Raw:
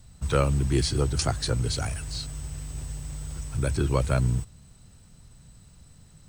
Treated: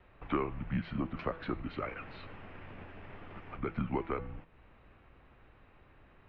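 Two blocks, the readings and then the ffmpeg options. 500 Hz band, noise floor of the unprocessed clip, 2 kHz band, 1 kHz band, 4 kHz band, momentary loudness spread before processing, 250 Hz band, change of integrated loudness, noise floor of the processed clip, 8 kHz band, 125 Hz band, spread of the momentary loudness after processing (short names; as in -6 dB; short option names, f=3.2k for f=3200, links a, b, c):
-9.5 dB, -53 dBFS, -6.5 dB, -5.0 dB, -21.0 dB, 13 LU, -5.5 dB, -11.0 dB, -61 dBFS, under -40 dB, -16.5 dB, 15 LU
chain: -af "acompressor=threshold=-32dB:ratio=4,bandreject=f=163.1:t=h:w=4,bandreject=f=326.2:t=h:w=4,bandreject=f=489.3:t=h:w=4,bandreject=f=652.4:t=h:w=4,bandreject=f=815.5:t=h:w=4,bandreject=f=978.6:t=h:w=4,bandreject=f=1.1417k:t=h:w=4,bandreject=f=1.3048k:t=h:w=4,bandreject=f=1.4679k:t=h:w=4,bandreject=f=1.631k:t=h:w=4,bandreject=f=1.7941k:t=h:w=4,bandreject=f=1.9572k:t=h:w=4,bandreject=f=2.1203k:t=h:w=4,bandreject=f=2.2834k:t=h:w=4,bandreject=f=2.4465k:t=h:w=4,bandreject=f=2.6096k:t=h:w=4,bandreject=f=2.7727k:t=h:w=4,bandreject=f=2.9358k:t=h:w=4,bandreject=f=3.0989k:t=h:w=4,bandreject=f=3.262k:t=h:w=4,bandreject=f=3.4251k:t=h:w=4,bandreject=f=3.5882k:t=h:w=4,bandreject=f=3.7513k:t=h:w=4,bandreject=f=3.9144k:t=h:w=4,bandreject=f=4.0775k:t=h:w=4,bandreject=f=4.2406k:t=h:w=4,bandreject=f=4.4037k:t=h:w=4,bandreject=f=4.5668k:t=h:w=4,bandreject=f=4.7299k:t=h:w=4,bandreject=f=4.893k:t=h:w=4,bandreject=f=5.0561k:t=h:w=4,bandreject=f=5.2192k:t=h:w=4,bandreject=f=5.3823k:t=h:w=4,bandreject=f=5.5454k:t=h:w=4,highpass=f=210:t=q:w=0.5412,highpass=f=210:t=q:w=1.307,lowpass=f=2.7k:t=q:w=0.5176,lowpass=f=2.7k:t=q:w=0.7071,lowpass=f=2.7k:t=q:w=1.932,afreqshift=-160,volume=5dB"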